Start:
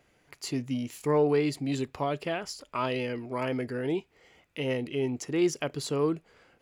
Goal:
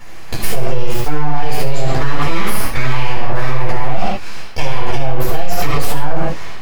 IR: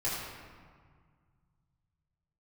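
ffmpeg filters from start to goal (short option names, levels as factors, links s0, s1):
-filter_complex "[0:a]areverse,acompressor=threshold=0.0141:ratio=6,areverse,aeval=exprs='abs(val(0))':c=same[s0];[1:a]atrim=start_sample=2205,afade=t=out:st=0.23:d=0.01,atrim=end_sample=10584[s1];[s0][s1]afir=irnorm=-1:irlink=0,alimiter=level_in=18.8:limit=0.891:release=50:level=0:latency=1,volume=0.891"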